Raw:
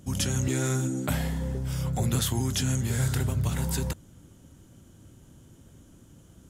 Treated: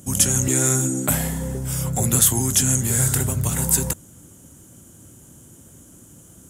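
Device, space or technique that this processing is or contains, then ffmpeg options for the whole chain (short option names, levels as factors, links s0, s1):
budget condenser microphone: -af "highpass=f=100:p=1,highshelf=f=6000:t=q:w=1.5:g=9.5,volume=2"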